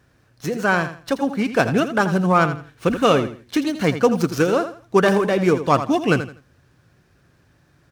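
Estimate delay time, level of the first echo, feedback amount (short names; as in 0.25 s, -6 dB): 82 ms, -11.0 dB, 26%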